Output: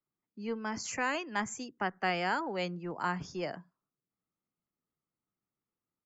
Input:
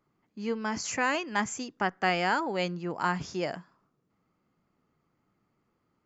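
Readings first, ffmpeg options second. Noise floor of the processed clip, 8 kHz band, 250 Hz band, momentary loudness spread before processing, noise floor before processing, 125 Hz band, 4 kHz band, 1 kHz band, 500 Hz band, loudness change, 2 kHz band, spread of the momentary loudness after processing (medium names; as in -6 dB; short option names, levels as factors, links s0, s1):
under -85 dBFS, no reading, -4.5 dB, 8 LU, -76 dBFS, -4.5 dB, -5.0 dB, -4.5 dB, -4.5 dB, -4.5 dB, -4.5 dB, 8 LU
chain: -filter_complex "[0:a]afftdn=nr=15:nf=-50,acrossover=split=240|340|2900[s0][s1][s2][s3];[s0]aecho=1:1:84:0.0891[s4];[s1]aeval=exprs='clip(val(0),-1,0.00841)':c=same[s5];[s4][s5][s2][s3]amix=inputs=4:normalize=0,volume=0.596"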